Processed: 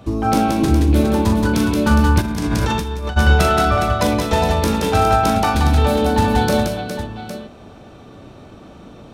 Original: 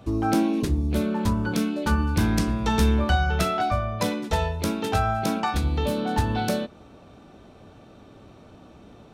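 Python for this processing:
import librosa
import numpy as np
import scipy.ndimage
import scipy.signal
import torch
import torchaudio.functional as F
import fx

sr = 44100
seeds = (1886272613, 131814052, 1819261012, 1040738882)

p1 = x + fx.echo_multitap(x, sr, ms=(41, 175, 234, 412, 810), db=(-6.0, -4.0, -17.5, -7.5, -11.0), dry=0)
p2 = fx.over_compress(p1, sr, threshold_db=-25.0, ratio=-1.0, at=(2.2, 3.16), fade=0.02)
y = p2 * librosa.db_to_amplitude(5.5)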